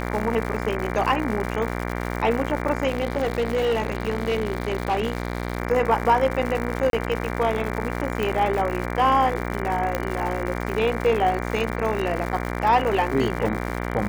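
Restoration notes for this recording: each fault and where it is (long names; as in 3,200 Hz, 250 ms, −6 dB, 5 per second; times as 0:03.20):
mains buzz 60 Hz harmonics 39 −28 dBFS
surface crackle 180 per second −28 dBFS
0:02.87–0:05.58: clipping −18 dBFS
0:06.90–0:06.93: drop-out 32 ms
0:08.23: click
0:09.95: click −10 dBFS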